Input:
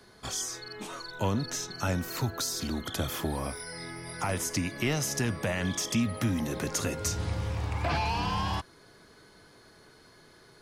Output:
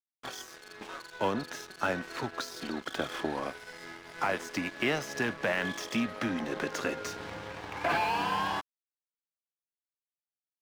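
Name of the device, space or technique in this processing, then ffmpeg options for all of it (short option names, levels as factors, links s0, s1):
pocket radio on a weak battery: -af "highpass=280,lowpass=3400,aeval=exprs='sgn(val(0))*max(abs(val(0))-0.00562,0)':c=same,equalizer=f=1600:t=o:w=0.26:g=5,volume=1.5"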